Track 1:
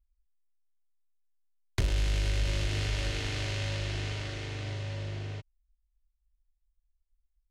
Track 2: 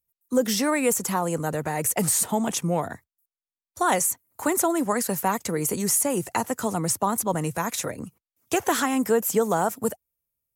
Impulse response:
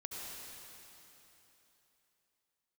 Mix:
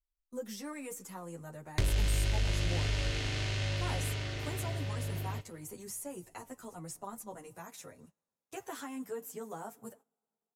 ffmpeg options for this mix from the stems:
-filter_complex "[0:a]volume=2.5dB,asplit=2[a][b];[b]volume=-18.5dB[c];[1:a]asplit=2[d][e];[e]adelay=9.2,afreqshift=-0.75[f];[d][f]amix=inputs=2:normalize=1,volume=-13dB,asplit=2[g][h];[h]volume=-22.5dB[i];[2:a]atrim=start_sample=2205[j];[c][i]amix=inputs=2:normalize=0[k];[k][j]afir=irnorm=-1:irlink=0[l];[a][g][l]amix=inputs=3:normalize=0,agate=range=-16dB:threshold=-53dB:ratio=16:detection=peak,flanger=delay=7:depth=1.2:regen=-68:speed=1:shape=triangular"

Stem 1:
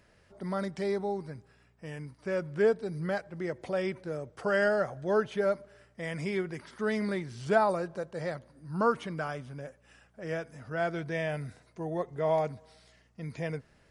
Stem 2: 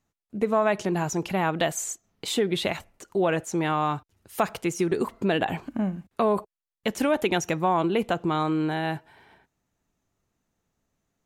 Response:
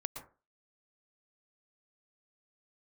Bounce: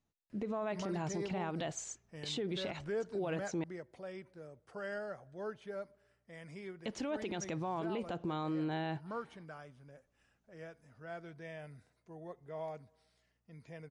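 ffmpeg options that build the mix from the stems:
-filter_complex "[0:a]adelay=300,volume=-7dB,afade=t=out:st=3.53:d=0.35:silence=0.398107[a];[1:a]lowpass=f=6.2k:w=0.5412,lowpass=f=6.2k:w=1.3066,equalizer=f=1.6k:t=o:w=1.8:g=-4,volume=-6.5dB,asplit=3[b][c][d];[b]atrim=end=3.64,asetpts=PTS-STARTPTS,afade=t=out:st=3.636:d=0.004:c=hsin[e];[c]atrim=start=3.64:end=6.57,asetpts=PTS-STARTPTS,volume=0[f];[d]atrim=start=6.57,asetpts=PTS-STARTPTS,afade=t=in:d=0.004:c=hsin[g];[e][f][g]concat=n=3:v=0:a=1[h];[a][h]amix=inputs=2:normalize=0,alimiter=level_in=5.5dB:limit=-24dB:level=0:latency=1:release=65,volume=-5.5dB"

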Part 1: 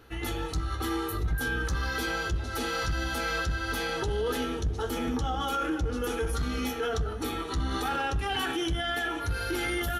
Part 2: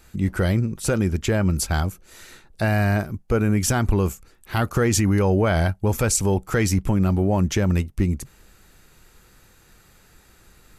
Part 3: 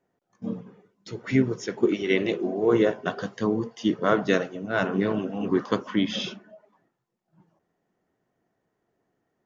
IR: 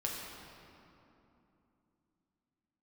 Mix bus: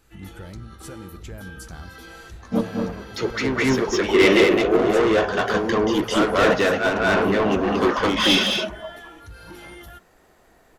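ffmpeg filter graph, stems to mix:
-filter_complex "[0:a]volume=-11.5dB[a];[1:a]acompressor=threshold=-34dB:ratio=2,volume=-11dB,asplit=3[b][c][d];[c]volume=-12.5dB[e];[2:a]asplit=2[f][g];[g]highpass=f=720:p=1,volume=27dB,asoftclip=type=tanh:threshold=-7dB[h];[f][h]amix=inputs=2:normalize=0,lowpass=f=3.4k:p=1,volume=-6dB,adelay=2100,volume=1dB,asplit=2[i][j];[j]volume=-5dB[k];[d]apad=whole_len=509607[l];[i][l]sidechaincompress=threshold=-49dB:ratio=3:attack=11:release=200[m];[3:a]atrim=start_sample=2205[n];[e][n]afir=irnorm=-1:irlink=0[o];[k]aecho=0:1:213:1[p];[a][b][m][o][p]amix=inputs=5:normalize=0"

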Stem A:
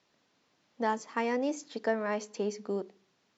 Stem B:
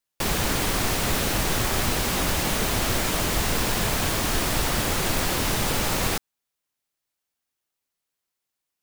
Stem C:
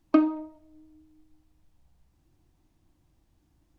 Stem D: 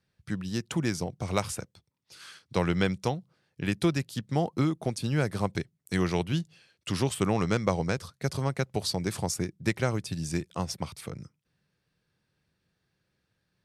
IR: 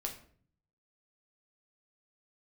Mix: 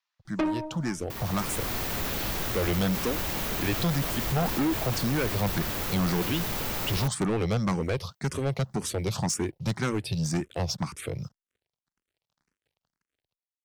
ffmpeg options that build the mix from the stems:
-filter_complex "[0:a]highpass=f=960:w=0.5412,highpass=f=960:w=1.3066,volume=-11dB[a];[1:a]dynaudnorm=f=100:g=11:m=11.5dB,aexciter=amount=4.4:drive=3.6:freq=12k,adelay=900,volume=-15dB[b];[2:a]aecho=1:1:5.2:0.99,adelay=250,volume=2.5dB[c];[3:a]dynaudnorm=f=780:g=3:m=11.5dB,acrusher=bits=8:mix=0:aa=0.5,asplit=2[d][e];[e]afreqshift=1.9[f];[d][f]amix=inputs=2:normalize=1,volume=0dB[g];[a][b][c][g]amix=inputs=4:normalize=0,highshelf=f=9.6k:g=-7.5,asoftclip=type=tanh:threshold=-22dB"

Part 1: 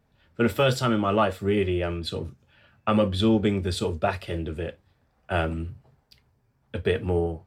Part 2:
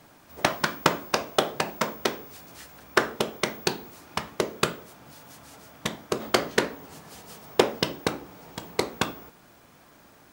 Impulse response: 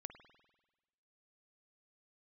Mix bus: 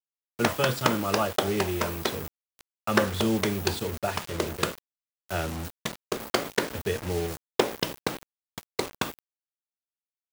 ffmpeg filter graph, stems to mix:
-filter_complex "[0:a]volume=-5.5dB,asplit=2[a][b];[b]volume=-19.5dB[c];[1:a]volume=-5.5dB,asplit=2[d][e];[e]volume=-3.5dB[f];[2:a]atrim=start_sample=2205[g];[c][f]amix=inputs=2:normalize=0[h];[h][g]afir=irnorm=-1:irlink=0[i];[a][d][i]amix=inputs=3:normalize=0,acrusher=bits=5:mix=0:aa=0.000001"

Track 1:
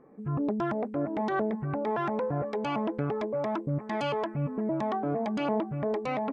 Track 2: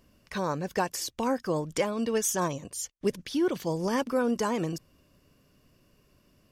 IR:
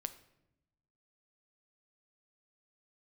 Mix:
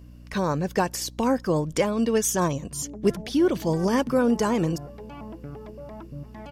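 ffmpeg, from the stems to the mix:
-filter_complex "[0:a]dynaudnorm=f=260:g=3:m=6.5dB,adelay=2450,volume=-19dB[a];[1:a]volume=2.5dB,asplit=2[b][c];[c]volume=-21dB[d];[2:a]atrim=start_sample=2205[e];[d][e]afir=irnorm=-1:irlink=0[f];[a][b][f]amix=inputs=3:normalize=0,lowshelf=f=290:g=6,aeval=exprs='val(0)+0.00631*(sin(2*PI*60*n/s)+sin(2*PI*2*60*n/s)/2+sin(2*PI*3*60*n/s)/3+sin(2*PI*4*60*n/s)/4+sin(2*PI*5*60*n/s)/5)':c=same"

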